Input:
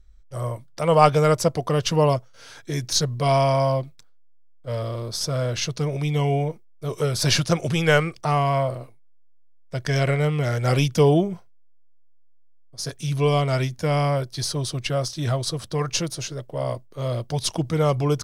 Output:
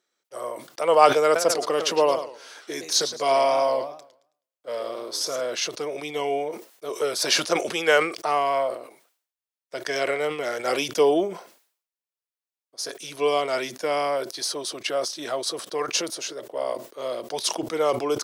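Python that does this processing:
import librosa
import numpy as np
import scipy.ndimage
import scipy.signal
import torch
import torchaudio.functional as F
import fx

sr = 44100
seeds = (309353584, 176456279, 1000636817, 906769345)

y = fx.echo_warbled(x, sr, ms=107, feedback_pct=30, rate_hz=2.8, cents=204, wet_db=-11, at=(1.24, 5.41))
y = scipy.signal.sosfilt(scipy.signal.butter(4, 320.0, 'highpass', fs=sr, output='sos'), y)
y = fx.sustainer(y, sr, db_per_s=110.0)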